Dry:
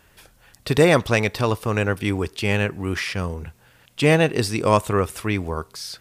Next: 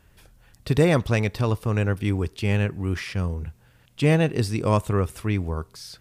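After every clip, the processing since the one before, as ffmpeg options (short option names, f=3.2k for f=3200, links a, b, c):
-af "lowshelf=f=240:g=11,volume=-7dB"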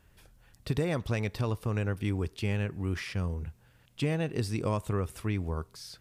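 -af "acompressor=threshold=-20dB:ratio=6,volume=-5dB"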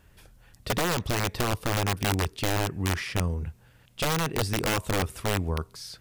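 -af "aeval=exprs='(mod(15*val(0)+1,2)-1)/15':c=same,volume=4.5dB"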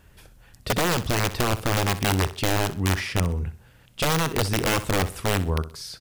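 -af "aecho=1:1:63|126|189:0.188|0.0584|0.0181,volume=3.5dB"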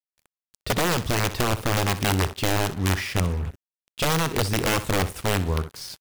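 -af "acrusher=bits=5:mix=0:aa=0.5"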